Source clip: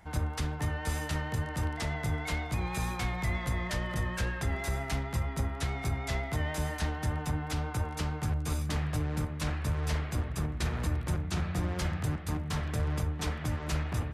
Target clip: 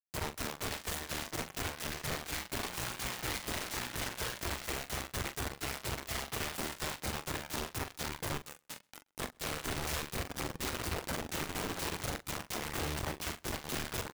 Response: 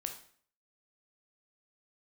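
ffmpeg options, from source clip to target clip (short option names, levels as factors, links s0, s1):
-filter_complex "[0:a]asplit=3[s0][s1][s2];[s0]afade=t=out:st=8.37:d=0.02[s3];[s1]highpass=250,afade=t=in:st=8.37:d=0.02,afade=t=out:st=9.18:d=0.02[s4];[s2]afade=t=in:st=9.18:d=0.02[s5];[s3][s4][s5]amix=inputs=3:normalize=0,acrusher=bits=4:mix=0:aa=0.000001,flanger=delay=1.3:depth=1.9:regen=-73:speed=0.99:shape=triangular,aeval=exprs='(mod(26.6*val(0)+1,2)-1)/26.6':c=same,asplit=2[s6][s7];[s7]adelay=42,volume=0.299[s8];[s6][s8]amix=inputs=2:normalize=0,asplit=2[s9][s10];[s10]adelay=128.3,volume=0.0316,highshelf=f=4000:g=-2.89[s11];[s9][s11]amix=inputs=2:normalize=0,volume=0.75"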